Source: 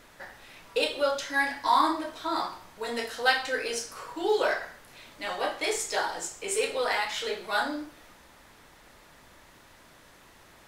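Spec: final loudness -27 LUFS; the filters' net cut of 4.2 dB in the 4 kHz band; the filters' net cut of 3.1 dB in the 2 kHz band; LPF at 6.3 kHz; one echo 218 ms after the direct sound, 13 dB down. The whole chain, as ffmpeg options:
-af "lowpass=6300,equalizer=f=2000:t=o:g=-3.5,equalizer=f=4000:t=o:g=-3.5,aecho=1:1:218:0.224,volume=1.41"

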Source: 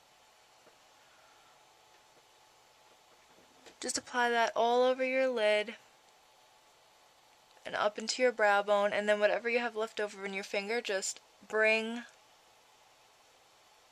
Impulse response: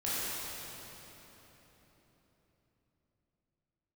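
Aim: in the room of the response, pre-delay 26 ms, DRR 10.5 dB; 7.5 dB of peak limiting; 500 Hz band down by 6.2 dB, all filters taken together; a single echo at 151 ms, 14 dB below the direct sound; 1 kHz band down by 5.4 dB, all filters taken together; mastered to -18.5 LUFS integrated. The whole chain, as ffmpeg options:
-filter_complex "[0:a]equalizer=f=500:t=o:g=-6,equalizer=f=1000:t=o:g=-5,alimiter=level_in=1.19:limit=0.0631:level=0:latency=1,volume=0.841,aecho=1:1:151:0.2,asplit=2[s0][s1];[1:a]atrim=start_sample=2205,adelay=26[s2];[s1][s2]afir=irnorm=-1:irlink=0,volume=0.126[s3];[s0][s3]amix=inputs=2:normalize=0,volume=7.94"

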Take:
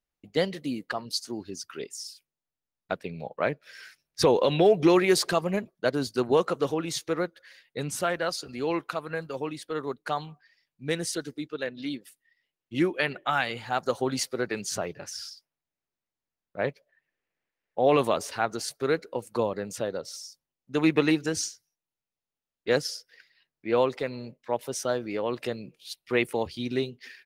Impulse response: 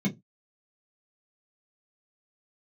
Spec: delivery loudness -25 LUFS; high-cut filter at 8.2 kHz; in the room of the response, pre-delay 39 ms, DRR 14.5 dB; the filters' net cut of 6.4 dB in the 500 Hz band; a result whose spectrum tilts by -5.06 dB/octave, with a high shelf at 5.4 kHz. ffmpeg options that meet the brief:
-filter_complex "[0:a]lowpass=8200,equalizer=f=500:t=o:g=-8,highshelf=f=5400:g=-9,asplit=2[s0][s1];[1:a]atrim=start_sample=2205,adelay=39[s2];[s1][s2]afir=irnorm=-1:irlink=0,volume=0.0944[s3];[s0][s3]amix=inputs=2:normalize=0,volume=1.88"

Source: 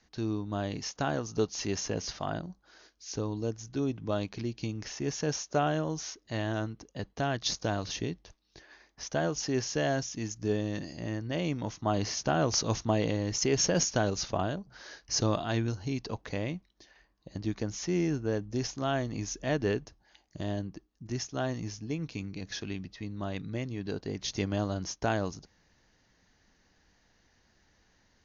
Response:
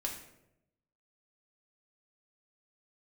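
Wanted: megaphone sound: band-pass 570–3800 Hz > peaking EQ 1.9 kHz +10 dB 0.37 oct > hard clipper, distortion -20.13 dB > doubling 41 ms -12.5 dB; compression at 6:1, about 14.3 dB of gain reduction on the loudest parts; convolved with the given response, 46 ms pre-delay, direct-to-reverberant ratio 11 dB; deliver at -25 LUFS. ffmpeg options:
-filter_complex "[0:a]acompressor=threshold=0.0112:ratio=6,asplit=2[s0][s1];[1:a]atrim=start_sample=2205,adelay=46[s2];[s1][s2]afir=irnorm=-1:irlink=0,volume=0.237[s3];[s0][s3]amix=inputs=2:normalize=0,highpass=570,lowpass=3800,equalizer=f=1900:t=o:w=0.37:g=10,asoftclip=type=hard:threshold=0.0178,asplit=2[s4][s5];[s5]adelay=41,volume=0.237[s6];[s4][s6]amix=inputs=2:normalize=0,volume=13.3"

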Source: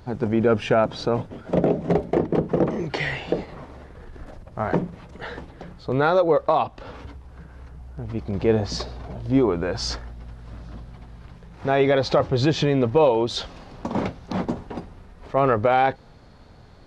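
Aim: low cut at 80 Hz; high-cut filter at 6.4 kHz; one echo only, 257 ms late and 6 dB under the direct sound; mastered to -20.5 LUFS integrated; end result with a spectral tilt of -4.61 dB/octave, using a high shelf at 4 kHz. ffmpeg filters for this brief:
-af "highpass=80,lowpass=6400,highshelf=f=4000:g=8,aecho=1:1:257:0.501,volume=1.19"

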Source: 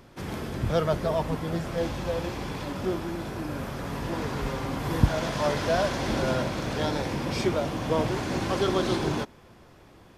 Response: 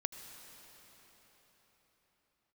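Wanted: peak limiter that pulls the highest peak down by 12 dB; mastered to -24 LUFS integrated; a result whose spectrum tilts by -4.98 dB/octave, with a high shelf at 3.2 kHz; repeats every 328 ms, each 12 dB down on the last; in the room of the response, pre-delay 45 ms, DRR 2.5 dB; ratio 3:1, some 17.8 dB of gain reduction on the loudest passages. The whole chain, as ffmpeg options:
-filter_complex "[0:a]highshelf=f=3200:g=4.5,acompressor=threshold=0.0126:ratio=3,alimiter=level_in=2.82:limit=0.0631:level=0:latency=1,volume=0.355,aecho=1:1:328|656|984:0.251|0.0628|0.0157,asplit=2[s0][s1];[1:a]atrim=start_sample=2205,adelay=45[s2];[s1][s2]afir=irnorm=-1:irlink=0,volume=0.75[s3];[s0][s3]amix=inputs=2:normalize=0,volume=6.31"

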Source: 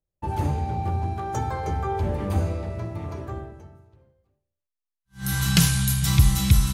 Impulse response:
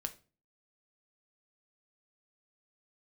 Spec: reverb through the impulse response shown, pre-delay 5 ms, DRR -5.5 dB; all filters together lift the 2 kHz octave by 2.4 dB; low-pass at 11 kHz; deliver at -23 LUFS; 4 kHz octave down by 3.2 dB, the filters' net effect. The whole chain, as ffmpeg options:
-filter_complex "[0:a]lowpass=11000,equalizer=f=2000:t=o:g=4.5,equalizer=f=4000:t=o:g=-5.5,asplit=2[s0][s1];[1:a]atrim=start_sample=2205,adelay=5[s2];[s1][s2]afir=irnorm=-1:irlink=0,volume=2.11[s3];[s0][s3]amix=inputs=2:normalize=0,volume=0.596"

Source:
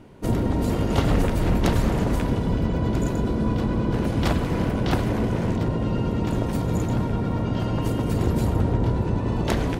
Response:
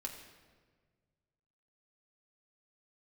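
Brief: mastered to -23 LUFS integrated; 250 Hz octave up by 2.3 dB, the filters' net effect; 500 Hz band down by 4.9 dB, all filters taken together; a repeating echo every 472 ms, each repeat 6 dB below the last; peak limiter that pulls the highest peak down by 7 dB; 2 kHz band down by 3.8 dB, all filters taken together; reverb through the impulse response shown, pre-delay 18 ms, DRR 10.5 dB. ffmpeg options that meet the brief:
-filter_complex "[0:a]equalizer=f=250:t=o:g=5,equalizer=f=500:t=o:g=-8.5,equalizer=f=2000:t=o:g=-4.5,alimiter=limit=0.188:level=0:latency=1,aecho=1:1:472|944|1416|1888|2360|2832:0.501|0.251|0.125|0.0626|0.0313|0.0157,asplit=2[s0][s1];[1:a]atrim=start_sample=2205,adelay=18[s2];[s1][s2]afir=irnorm=-1:irlink=0,volume=0.355[s3];[s0][s3]amix=inputs=2:normalize=0"

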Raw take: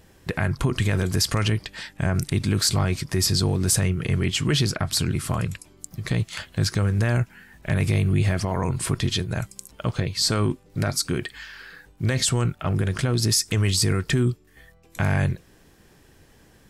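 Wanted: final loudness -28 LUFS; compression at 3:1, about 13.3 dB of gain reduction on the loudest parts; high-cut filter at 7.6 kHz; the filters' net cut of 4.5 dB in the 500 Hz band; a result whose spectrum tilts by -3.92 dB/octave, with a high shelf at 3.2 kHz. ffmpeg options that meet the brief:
-af "lowpass=7600,equalizer=f=500:t=o:g=-6.5,highshelf=f=3200:g=4.5,acompressor=threshold=0.0158:ratio=3,volume=2.51"

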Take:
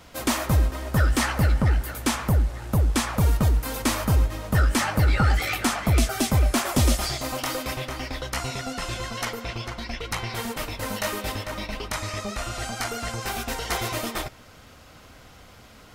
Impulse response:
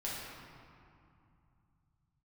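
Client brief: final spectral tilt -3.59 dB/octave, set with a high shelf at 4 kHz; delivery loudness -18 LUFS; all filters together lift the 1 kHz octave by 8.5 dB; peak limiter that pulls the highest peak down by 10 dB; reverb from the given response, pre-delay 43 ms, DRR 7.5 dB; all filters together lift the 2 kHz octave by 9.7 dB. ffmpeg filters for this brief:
-filter_complex "[0:a]equalizer=f=1000:t=o:g=8,equalizer=f=2000:t=o:g=7.5,highshelf=f=4000:g=8.5,alimiter=limit=0.2:level=0:latency=1,asplit=2[s0][s1];[1:a]atrim=start_sample=2205,adelay=43[s2];[s1][s2]afir=irnorm=-1:irlink=0,volume=0.299[s3];[s0][s3]amix=inputs=2:normalize=0,volume=1.88"

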